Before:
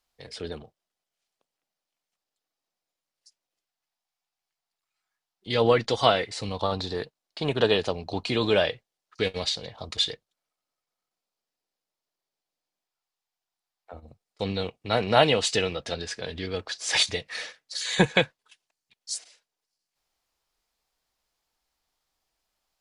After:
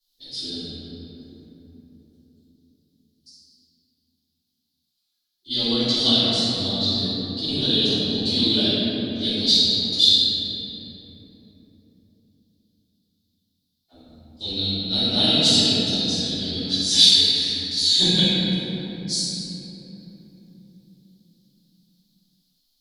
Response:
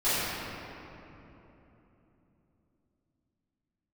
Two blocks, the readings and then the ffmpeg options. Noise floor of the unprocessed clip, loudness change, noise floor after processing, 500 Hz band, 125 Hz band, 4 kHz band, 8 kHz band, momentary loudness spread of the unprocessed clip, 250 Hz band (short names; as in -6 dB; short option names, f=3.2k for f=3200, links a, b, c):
under -85 dBFS, +7.5 dB, -75 dBFS, -5.0 dB, +4.0 dB, +13.0 dB, +7.0 dB, 14 LU, +8.0 dB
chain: -filter_complex "[0:a]equalizer=f=125:t=o:w=1:g=-4,equalizer=f=250:t=o:w=1:g=11,equalizer=f=500:t=o:w=1:g=-10,equalizer=f=1k:t=o:w=1:g=-11,equalizer=f=2k:t=o:w=1:g=-9,equalizer=f=4k:t=o:w=1:g=9,equalizer=f=8k:t=o:w=1:g=-9,aexciter=amount=5.6:drive=3.6:freq=3.4k[a];[1:a]atrim=start_sample=2205,asetrate=38808,aresample=44100[b];[a][b]afir=irnorm=-1:irlink=0,volume=-13.5dB"